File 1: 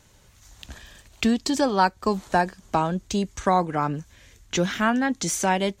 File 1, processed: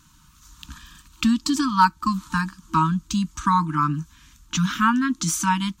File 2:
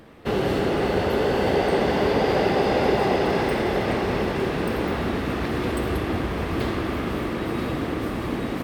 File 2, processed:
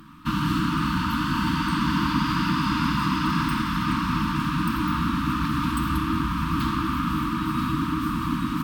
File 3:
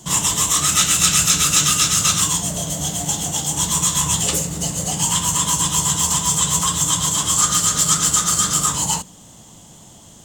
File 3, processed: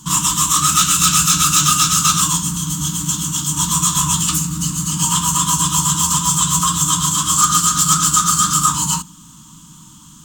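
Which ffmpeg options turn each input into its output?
ffmpeg -i in.wav -af "aeval=exprs='0.447*(abs(mod(val(0)/0.447+3,4)-2)-1)':channel_layout=same,afftfilt=real='re*(1-between(b*sr/4096,330,900))':imag='im*(1-between(b*sr/4096,330,900))':win_size=4096:overlap=0.75,equalizer=frequency=100:width_type=o:width=0.33:gain=-9,equalizer=frequency=160:width_type=o:width=0.33:gain=6,equalizer=frequency=400:width_type=o:width=0.33:gain=7,equalizer=frequency=800:width_type=o:width=0.33:gain=6,equalizer=frequency=1250:width_type=o:width=0.33:gain=8,equalizer=frequency=2000:width_type=o:width=0.33:gain=-10,equalizer=frequency=16000:width_type=o:width=0.33:gain=6,volume=1.5dB" out.wav

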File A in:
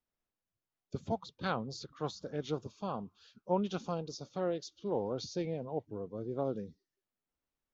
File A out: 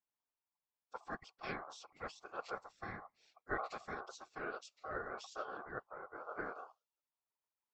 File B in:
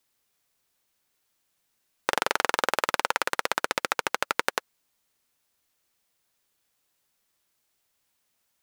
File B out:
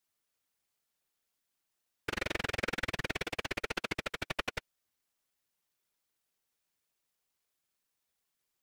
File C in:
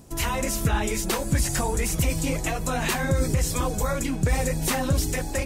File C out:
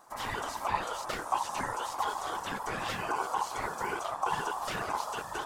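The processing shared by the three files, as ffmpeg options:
ffmpeg -i in.wav -filter_complex "[0:a]afftfilt=real='hypot(re,im)*cos(2*PI*random(0))':imag='hypot(re,im)*sin(2*PI*random(1))':win_size=512:overlap=0.75,aeval=exprs='val(0)*sin(2*PI*940*n/s)':channel_layout=same,acrossover=split=5700[link_01][link_02];[link_02]acompressor=threshold=-49dB:ratio=4:attack=1:release=60[link_03];[link_01][link_03]amix=inputs=2:normalize=0" out.wav

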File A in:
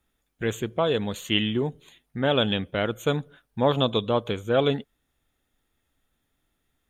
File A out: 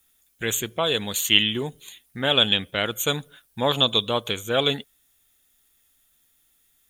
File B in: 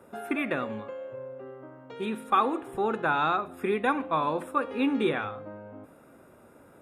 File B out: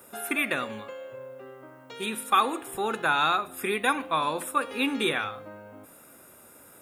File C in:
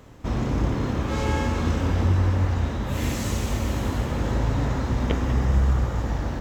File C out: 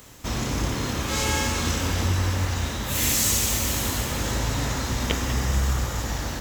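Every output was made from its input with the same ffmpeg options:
ffmpeg -i in.wav -af "crystalizer=i=8.5:c=0,volume=-3.5dB" out.wav

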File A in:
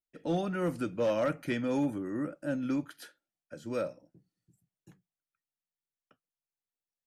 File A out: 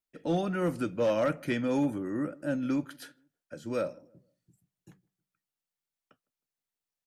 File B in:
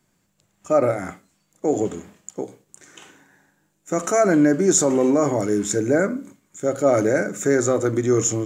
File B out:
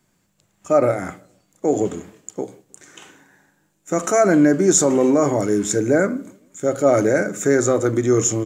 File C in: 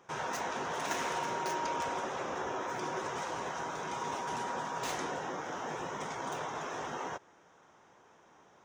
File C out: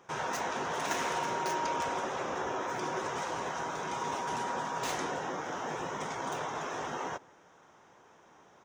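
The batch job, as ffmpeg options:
ffmpeg -i in.wav -filter_complex "[0:a]asplit=2[link_01][link_02];[link_02]adelay=157,lowpass=frequency=820:poles=1,volume=-23.5dB,asplit=2[link_03][link_04];[link_04]adelay=157,lowpass=frequency=820:poles=1,volume=0.4,asplit=2[link_05][link_06];[link_06]adelay=157,lowpass=frequency=820:poles=1,volume=0.4[link_07];[link_01][link_03][link_05][link_07]amix=inputs=4:normalize=0,volume=2dB" out.wav

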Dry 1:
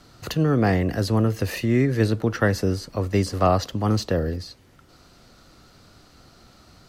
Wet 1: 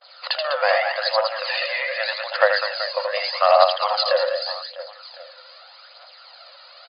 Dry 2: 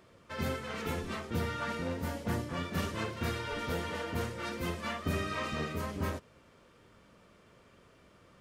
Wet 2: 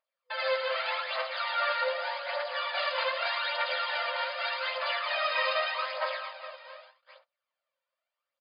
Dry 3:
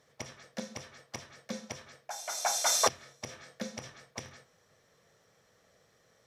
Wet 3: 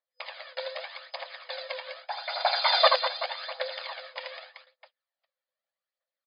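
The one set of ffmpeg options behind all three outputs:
ffmpeg -i in.wav -af "aemphasis=mode=production:type=50fm,aecho=1:1:80|200|380|650|1055:0.631|0.398|0.251|0.158|0.1,agate=range=-34dB:threshold=-51dB:ratio=16:detection=peak,aphaser=in_gain=1:out_gain=1:delay=2.2:decay=0.47:speed=0.83:type=triangular,afftfilt=real='re*between(b*sr/4096,500,5000)':imag='im*between(b*sr/4096,500,5000)':win_size=4096:overlap=0.75,volume=5dB" out.wav

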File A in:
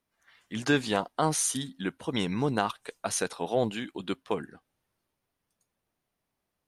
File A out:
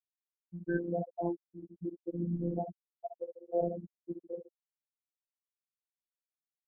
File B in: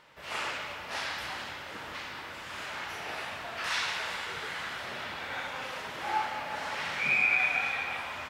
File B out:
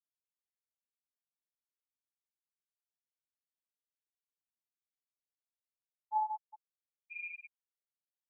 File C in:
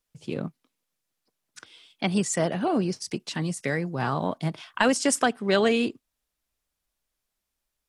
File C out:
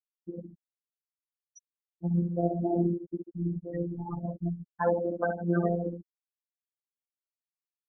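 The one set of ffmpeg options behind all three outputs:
ffmpeg -i in.wav -filter_complex "[0:a]highpass=48,aemphasis=mode=reproduction:type=riaa,acrossover=split=3500[link_01][link_02];[link_02]acompressor=threshold=-55dB:ratio=4:attack=1:release=60[link_03];[link_01][link_03]amix=inputs=2:normalize=0,equalizer=frequency=140:width_type=o:width=1.1:gain=-11.5,aecho=1:1:61.22|142.9:0.631|0.447,acompressor=mode=upward:threshold=-32dB:ratio=2.5,aexciter=amount=13.6:drive=4.6:freq=4500,afftfilt=real='re*gte(hypot(re,im),0.282)':imag='im*gte(hypot(re,im),0.282)':win_size=1024:overlap=0.75,tremolo=f=100:d=0.333,afftfilt=real='hypot(re,im)*cos(PI*b)':imag='0':win_size=1024:overlap=0.75,volume=-1dB" out.wav

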